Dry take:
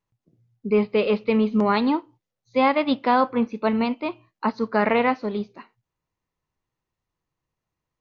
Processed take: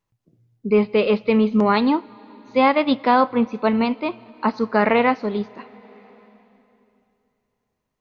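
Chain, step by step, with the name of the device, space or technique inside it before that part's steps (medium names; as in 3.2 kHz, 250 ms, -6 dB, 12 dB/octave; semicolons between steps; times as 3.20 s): compressed reverb return (on a send at -13.5 dB: reverberation RT60 2.9 s, pre-delay 78 ms + compression 6:1, threshold -30 dBFS, peak gain reduction 13.5 dB); on the sum: trim +3 dB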